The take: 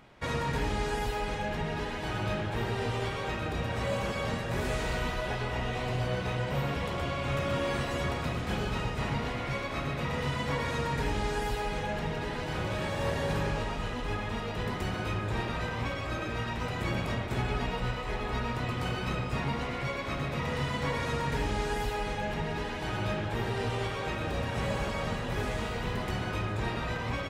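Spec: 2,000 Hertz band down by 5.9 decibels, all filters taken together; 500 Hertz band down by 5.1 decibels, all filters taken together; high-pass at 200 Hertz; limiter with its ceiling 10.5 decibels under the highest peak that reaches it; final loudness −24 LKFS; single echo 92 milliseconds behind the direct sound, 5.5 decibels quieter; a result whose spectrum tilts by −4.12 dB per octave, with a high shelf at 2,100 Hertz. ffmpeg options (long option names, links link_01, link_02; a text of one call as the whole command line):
ffmpeg -i in.wav -af "highpass=200,equalizer=frequency=500:width_type=o:gain=-5.5,equalizer=frequency=2000:width_type=o:gain=-3.5,highshelf=frequency=2100:gain=-6.5,alimiter=level_in=9.5dB:limit=-24dB:level=0:latency=1,volume=-9.5dB,aecho=1:1:92:0.531,volume=17dB" out.wav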